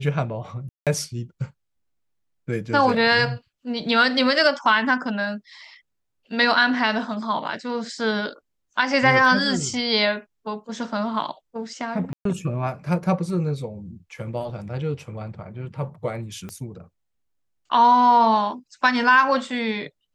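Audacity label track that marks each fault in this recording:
0.690000	0.870000	dropout 177 ms
12.130000	12.250000	dropout 123 ms
16.490000	16.490000	pop -21 dBFS

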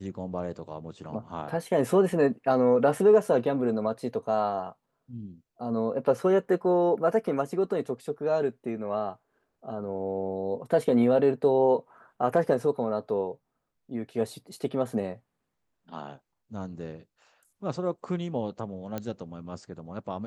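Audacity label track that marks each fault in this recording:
18.980000	18.980000	pop -19 dBFS

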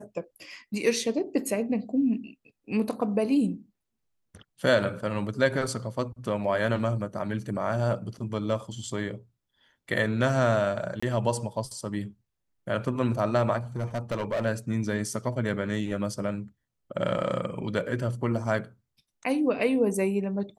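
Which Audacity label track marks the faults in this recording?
11.000000	11.030000	dropout 25 ms
13.760000	14.460000	clipped -24.5 dBFS

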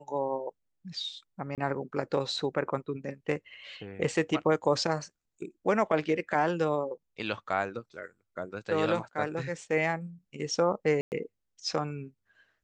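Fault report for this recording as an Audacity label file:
1.550000	1.580000	dropout 27 ms
11.010000	11.120000	dropout 109 ms

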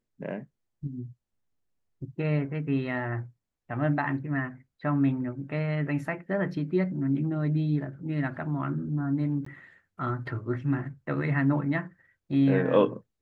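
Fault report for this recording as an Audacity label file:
9.450000	9.460000	dropout 14 ms

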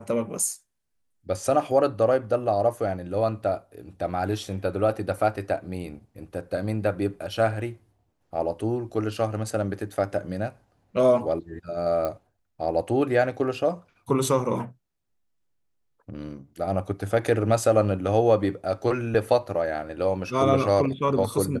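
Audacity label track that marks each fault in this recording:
12.050000	12.050000	pop -16 dBFS

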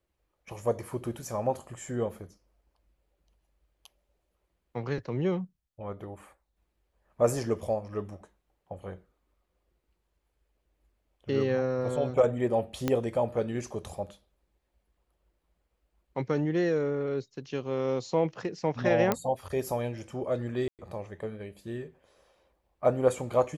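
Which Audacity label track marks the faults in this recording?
12.880000	12.880000	pop -13 dBFS
19.120000	19.120000	pop -11 dBFS
20.680000	20.790000	dropout 108 ms

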